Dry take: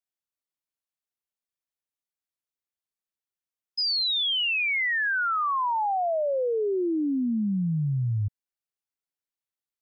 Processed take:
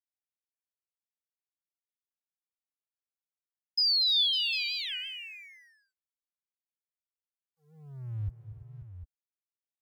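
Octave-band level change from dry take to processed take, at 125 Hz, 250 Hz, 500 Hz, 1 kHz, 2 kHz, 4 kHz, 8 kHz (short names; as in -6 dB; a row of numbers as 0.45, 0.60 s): -11.5 dB, under -30 dB, under -40 dB, under -40 dB, -13.0 dB, 0.0 dB, n/a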